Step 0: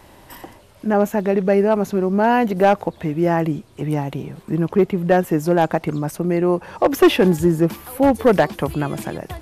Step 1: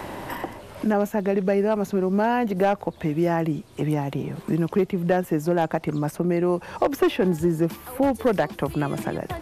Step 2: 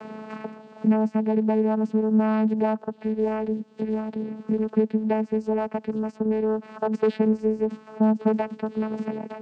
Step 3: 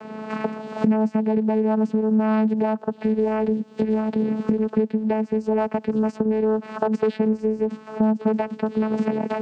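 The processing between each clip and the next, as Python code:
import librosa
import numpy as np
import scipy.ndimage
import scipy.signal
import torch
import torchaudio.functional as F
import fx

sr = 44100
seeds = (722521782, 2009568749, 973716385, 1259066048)

y1 = fx.band_squash(x, sr, depth_pct=70)
y1 = y1 * librosa.db_to_amplitude(-5.5)
y2 = fx.vocoder(y1, sr, bands=8, carrier='saw', carrier_hz=217.0)
y3 = fx.recorder_agc(y2, sr, target_db=-13.5, rise_db_per_s=23.0, max_gain_db=30)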